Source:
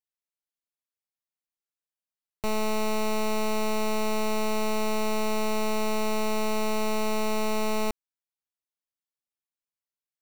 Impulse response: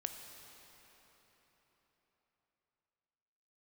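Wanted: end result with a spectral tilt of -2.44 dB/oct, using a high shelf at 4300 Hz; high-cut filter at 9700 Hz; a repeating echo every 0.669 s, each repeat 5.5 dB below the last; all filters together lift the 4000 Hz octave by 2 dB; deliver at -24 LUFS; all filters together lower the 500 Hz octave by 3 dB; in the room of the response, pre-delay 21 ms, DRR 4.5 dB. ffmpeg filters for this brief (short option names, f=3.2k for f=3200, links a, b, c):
-filter_complex "[0:a]lowpass=9.7k,equalizer=f=500:t=o:g=-4,equalizer=f=4k:t=o:g=4.5,highshelf=f=4.3k:g=-3.5,aecho=1:1:669|1338|2007|2676|3345|4014|4683:0.531|0.281|0.149|0.079|0.0419|0.0222|0.0118,asplit=2[a][b];[1:a]atrim=start_sample=2205,adelay=21[c];[b][c]afir=irnorm=-1:irlink=0,volume=-3.5dB[d];[a][d]amix=inputs=2:normalize=0,volume=2dB"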